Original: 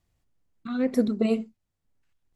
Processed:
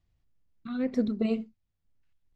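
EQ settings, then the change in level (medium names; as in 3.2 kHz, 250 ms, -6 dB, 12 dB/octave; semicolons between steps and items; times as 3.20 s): distance through air 170 m; bass shelf 170 Hz +9 dB; treble shelf 2.9 kHz +10.5 dB; -6.5 dB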